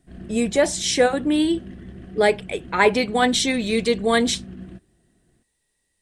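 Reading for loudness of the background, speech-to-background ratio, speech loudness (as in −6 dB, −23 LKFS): −39.5 LKFS, 19.0 dB, −20.5 LKFS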